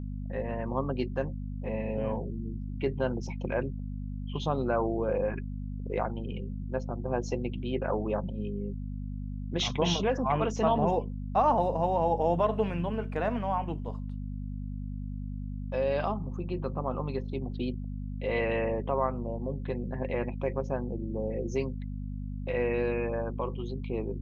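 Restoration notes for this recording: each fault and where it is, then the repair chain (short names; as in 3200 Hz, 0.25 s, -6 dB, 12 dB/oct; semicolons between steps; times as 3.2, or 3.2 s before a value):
hum 50 Hz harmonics 5 -36 dBFS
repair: de-hum 50 Hz, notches 5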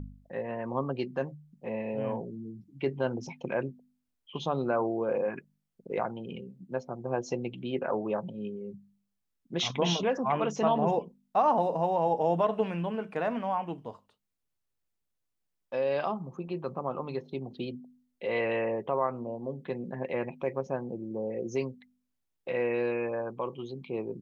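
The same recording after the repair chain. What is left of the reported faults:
none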